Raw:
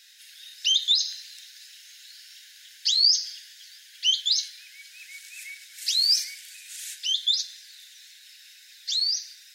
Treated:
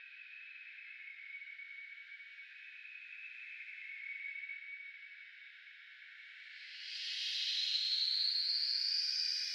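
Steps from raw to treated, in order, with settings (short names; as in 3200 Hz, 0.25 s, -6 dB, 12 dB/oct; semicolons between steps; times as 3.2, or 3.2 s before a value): Paulstretch 7.7×, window 0.25 s, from 4.94; low-pass opened by the level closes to 1900 Hz, open at -23 dBFS; air absorption 370 m; mismatched tape noise reduction encoder only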